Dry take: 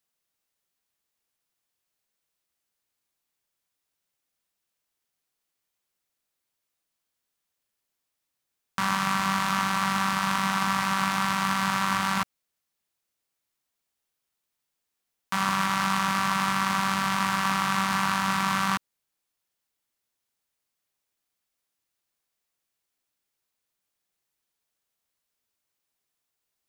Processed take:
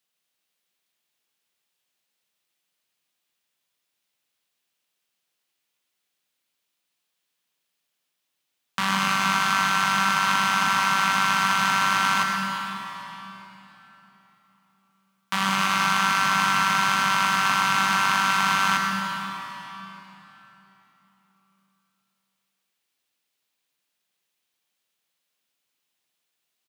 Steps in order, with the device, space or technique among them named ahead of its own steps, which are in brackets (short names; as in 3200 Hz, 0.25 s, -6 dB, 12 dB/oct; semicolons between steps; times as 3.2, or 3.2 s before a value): PA in a hall (HPF 120 Hz 24 dB/oct; bell 3100 Hz +6.5 dB 1.2 oct; echo 0.108 s -11 dB; reverb RT60 3.7 s, pre-delay 86 ms, DRR 2 dB)